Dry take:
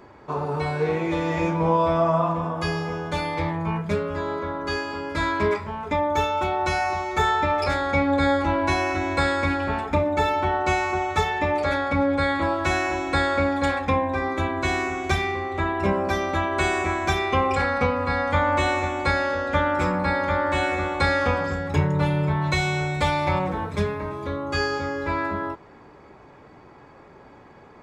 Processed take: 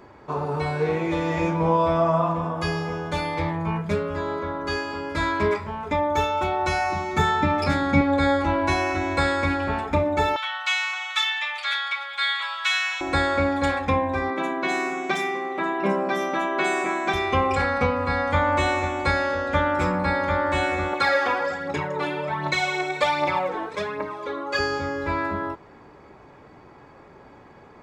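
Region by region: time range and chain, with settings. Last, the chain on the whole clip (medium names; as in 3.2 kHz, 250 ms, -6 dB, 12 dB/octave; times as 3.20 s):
6.92–8.01 s: high-pass 110 Hz + resonant low shelf 330 Hz +8.5 dB, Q 1.5
10.36–13.01 s: high-pass 1.2 kHz 24 dB/octave + peaking EQ 3.3 kHz +12.5 dB 0.71 oct
14.30–17.14 s: brick-wall FIR high-pass 160 Hz + bands offset in time lows, highs 60 ms, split 4.8 kHz
20.93–24.59 s: band-pass 330–7200 Hz + phaser 1.3 Hz, delay 3.1 ms, feedback 55%
whole clip: none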